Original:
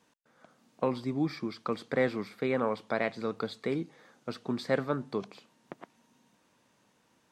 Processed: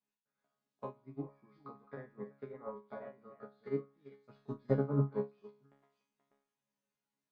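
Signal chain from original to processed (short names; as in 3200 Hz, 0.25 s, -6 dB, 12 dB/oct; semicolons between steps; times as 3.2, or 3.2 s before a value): reverse delay 0.354 s, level -7.5 dB; dynamic EQ 1100 Hz, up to +5 dB, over -46 dBFS, Q 1.3; treble ducked by the level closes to 860 Hz, closed at -27 dBFS; 4.29–5.06 low shelf 370 Hz +8.5 dB; resonator bank C#3 fifth, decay 0.48 s; upward expander 2.5:1, over -53 dBFS; gain +13.5 dB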